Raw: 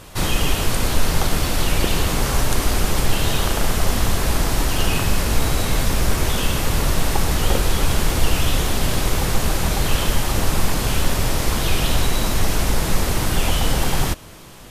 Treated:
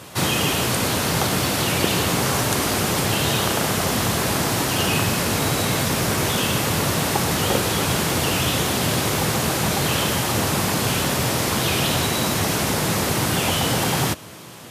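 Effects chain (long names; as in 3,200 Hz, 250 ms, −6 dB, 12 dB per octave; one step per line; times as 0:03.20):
high-pass filter 100 Hz 24 dB per octave
in parallel at −9 dB: soft clipping −16 dBFS, distortion −19 dB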